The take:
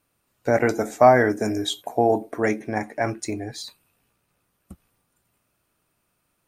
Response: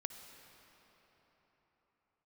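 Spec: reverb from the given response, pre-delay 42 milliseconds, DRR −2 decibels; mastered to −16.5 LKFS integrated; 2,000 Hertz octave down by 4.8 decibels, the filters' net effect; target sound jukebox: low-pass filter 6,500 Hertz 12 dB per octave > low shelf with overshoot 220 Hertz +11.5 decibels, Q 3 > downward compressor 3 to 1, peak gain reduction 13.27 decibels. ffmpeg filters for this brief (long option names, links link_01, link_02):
-filter_complex "[0:a]equalizer=frequency=2000:width_type=o:gain=-6,asplit=2[link_01][link_02];[1:a]atrim=start_sample=2205,adelay=42[link_03];[link_02][link_03]afir=irnorm=-1:irlink=0,volume=4dB[link_04];[link_01][link_04]amix=inputs=2:normalize=0,lowpass=6500,lowshelf=frequency=220:width_type=q:width=3:gain=11.5,acompressor=threshold=-23dB:ratio=3,volume=9.5dB"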